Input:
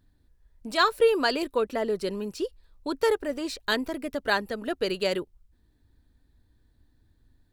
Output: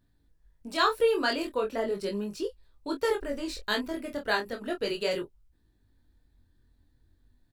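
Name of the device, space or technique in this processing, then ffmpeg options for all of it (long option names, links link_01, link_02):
double-tracked vocal: -filter_complex "[0:a]asplit=3[link_01][link_02][link_03];[link_01]afade=type=out:start_time=3.2:duration=0.02[link_04];[link_02]asubboost=boost=4:cutoff=77,afade=type=in:start_time=3.2:duration=0.02,afade=type=out:start_time=3.61:duration=0.02[link_05];[link_03]afade=type=in:start_time=3.61:duration=0.02[link_06];[link_04][link_05][link_06]amix=inputs=3:normalize=0,asplit=2[link_07][link_08];[link_08]adelay=25,volume=-8.5dB[link_09];[link_07][link_09]amix=inputs=2:normalize=0,flanger=delay=17.5:depth=6.9:speed=0.38"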